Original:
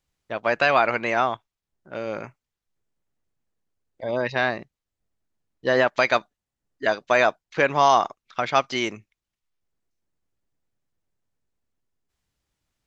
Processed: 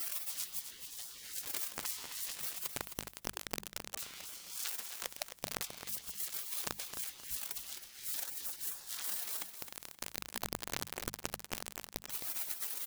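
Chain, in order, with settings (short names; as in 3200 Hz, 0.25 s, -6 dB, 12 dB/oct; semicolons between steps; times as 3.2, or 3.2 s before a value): zero-crossing step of -23.5 dBFS; spectral gate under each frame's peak -30 dB weak; notches 50/100/150/200 Hz; negative-ratio compressor -46 dBFS, ratio -0.5; on a send: feedback echo 0.263 s, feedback 31%, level -9 dB; on the sum: gain +4.5 dB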